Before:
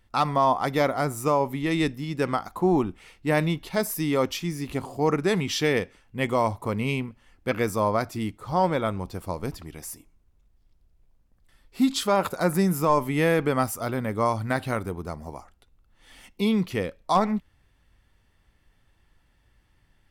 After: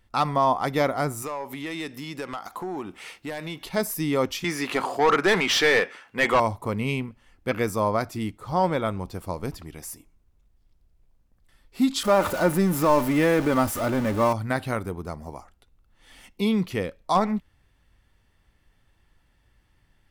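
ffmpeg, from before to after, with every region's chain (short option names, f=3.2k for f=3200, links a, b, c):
-filter_complex "[0:a]asettb=1/sr,asplit=3[a][b][c];[a]atrim=end=1.224[d];[b]atrim=start=1.22:end=3.66,asetpts=PTS-STARTPTS,afade=t=in:d=0.004:c=qsin,afade=t=out:st=2.436:d=0.004:c=qsin,highpass=f=540:p=1,acompressor=threshold=-44dB:ratio=2.5:attack=3.2:release=140:knee=1:detection=peak,aeval=exprs='0.0562*sin(PI/2*2*val(0)/0.0562)':c=same[e];[c]atrim=start=3.656[f];[d][e]acrossfade=d=0.004:c1=hsin:c2=qsin[g];[g][f]acrossfade=d=0.004:c1=qsin:c2=hsin,asettb=1/sr,asplit=3[h][i][j];[h]atrim=end=4.444[k];[i]atrim=start=4.44:end=6.4,asetpts=PTS-STARTPTS,afade=t=in:d=0.004:c=qsin,afade=t=out:st=1.956:d=0.004:c=qsin,highpass=f=290:p=1,equalizer=f=1.5k:w=1.8:g=4.5,asplit=2[l][m];[m]highpass=f=720:p=1,volume=20dB,asoftclip=type=tanh:threshold=-10dB[n];[l][n]amix=inputs=2:normalize=0,lowpass=f=3.2k:p=1,volume=-6dB[o];[j]atrim=start=6.396[p];[k][o]acrossfade=d=0.004:c1=hsin:c2=qsin[q];[q][p]acrossfade=d=0.004:c1=qsin:c2=hsin,asettb=1/sr,asplit=3[r][s][t];[r]atrim=end=12.034[u];[s]atrim=start=12.03:end=14.33,asetpts=PTS-STARTPTS,afade=t=in:d=0.004:c=qsin,afade=t=out:st=2.296:d=0.004:c=qsin,aeval=exprs='val(0)+0.5*0.0501*sgn(val(0))':c=same,aecho=1:1:3.4:0.36,atrim=end_sample=101430,adynamicequalizer=threshold=0.0158:dfrequency=2100:dqfactor=0.7:tfrequency=2100:tqfactor=0.7:attack=5:release=100:ratio=0.375:range=2.5:mode=cutabove:tftype=highshelf[v];[t]atrim=start=14.326[w];[u][v]acrossfade=d=0.004:c1=hsin:c2=qsin[x];[x][w]acrossfade=d=0.004:c1=qsin:c2=hsin"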